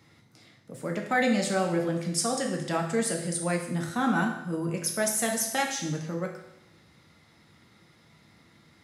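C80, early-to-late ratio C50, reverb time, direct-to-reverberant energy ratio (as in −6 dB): 8.5 dB, 6.0 dB, 0.85 s, 1.0 dB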